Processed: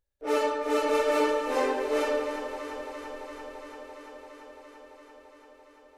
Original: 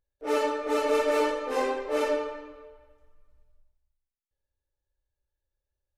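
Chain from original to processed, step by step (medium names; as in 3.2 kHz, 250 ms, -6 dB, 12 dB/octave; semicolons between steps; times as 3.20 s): echo whose repeats swap between lows and highs 170 ms, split 980 Hz, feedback 89%, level -9.5 dB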